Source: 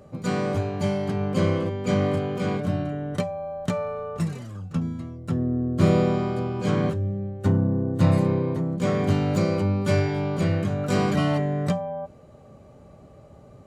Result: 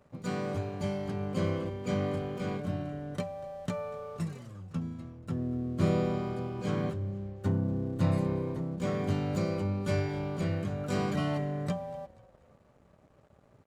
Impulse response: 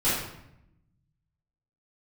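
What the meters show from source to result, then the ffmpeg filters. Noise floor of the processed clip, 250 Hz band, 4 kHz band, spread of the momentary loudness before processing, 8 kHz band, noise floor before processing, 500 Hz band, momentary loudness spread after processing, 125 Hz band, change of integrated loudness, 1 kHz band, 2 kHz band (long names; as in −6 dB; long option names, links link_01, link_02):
−62 dBFS, −8.0 dB, −8.0 dB, 8 LU, −8.0 dB, −49 dBFS, −8.5 dB, 8 LU, −8.0 dB, −8.0 dB, −8.0 dB, −8.0 dB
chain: -filter_complex "[0:a]aeval=exprs='sgn(val(0))*max(abs(val(0))-0.00266,0)':channel_layout=same,asplit=4[link_01][link_02][link_03][link_04];[link_02]adelay=241,afreqshift=-33,volume=-21dB[link_05];[link_03]adelay=482,afreqshift=-66,volume=-28.1dB[link_06];[link_04]adelay=723,afreqshift=-99,volume=-35.3dB[link_07];[link_01][link_05][link_06][link_07]amix=inputs=4:normalize=0,volume=-8dB"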